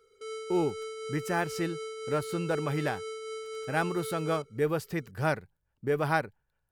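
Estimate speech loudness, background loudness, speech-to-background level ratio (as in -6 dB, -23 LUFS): -32.0 LUFS, -39.0 LUFS, 7.0 dB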